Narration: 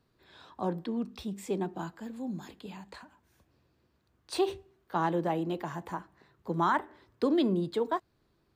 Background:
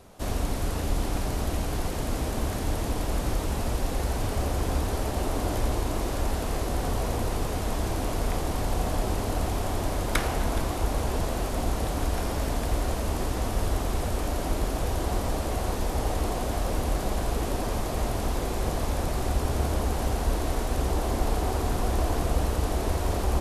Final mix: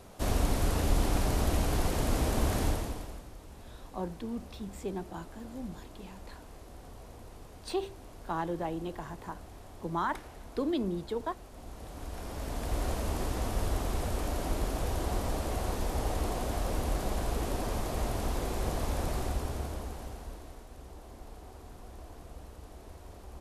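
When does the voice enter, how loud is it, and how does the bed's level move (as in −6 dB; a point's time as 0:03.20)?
3.35 s, −4.5 dB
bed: 0:02.65 0 dB
0:03.29 −21 dB
0:11.50 −21 dB
0:12.84 −4.5 dB
0:19.15 −4.5 dB
0:20.67 −22 dB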